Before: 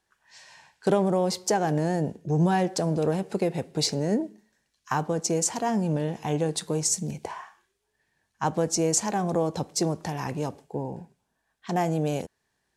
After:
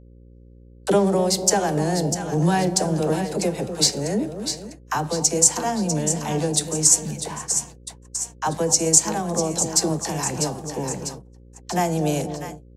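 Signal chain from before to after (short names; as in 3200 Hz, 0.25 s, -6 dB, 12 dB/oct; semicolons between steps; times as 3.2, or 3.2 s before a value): high shelf 4100 Hz +10 dB; on a send: split-band echo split 830 Hz, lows 0.246 s, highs 0.647 s, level -9 dB; on the sum: flange 0.31 Hz, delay 9.3 ms, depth 1.2 ms, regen +88%; AGC gain up to 10 dB; dynamic EQ 7700 Hz, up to +3 dB, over -35 dBFS, Q 2.6; gate -32 dBFS, range -52 dB; dispersion lows, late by 49 ms, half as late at 390 Hz; buzz 60 Hz, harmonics 9, -45 dBFS -6 dB/oct; gain -2 dB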